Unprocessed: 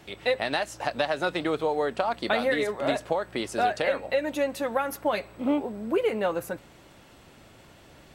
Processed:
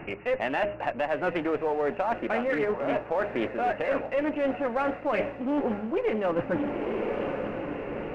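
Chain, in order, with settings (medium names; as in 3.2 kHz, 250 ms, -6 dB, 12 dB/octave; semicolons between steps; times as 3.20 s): brick-wall FIR low-pass 2.9 kHz; bass shelf 460 Hz +5 dB; de-hum 204 Hz, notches 3; in parallel at -4 dB: one-sided clip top -30.5 dBFS; on the sum: peaking EQ 74 Hz -8 dB 1.5 oct; echo that smears into a reverb 1010 ms, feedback 46%, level -15.5 dB; reverse; compression 12:1, threshold -31 dBFS, peak gain reduction 17 dB; reverse; loudspeaker Doppler distortion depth 0.24 ms; trim +7 dB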